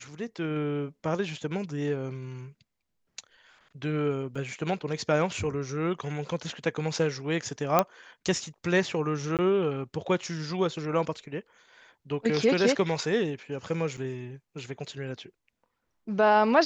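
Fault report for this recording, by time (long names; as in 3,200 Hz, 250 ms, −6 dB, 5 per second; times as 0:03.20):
0:04.35: drop-out 4.1 ms
0:07.79: click −7 dBFS
0:09.37–0:09.39: drop-out 18 ms
0:13.97–0:13.98: drop-out 5.7 ms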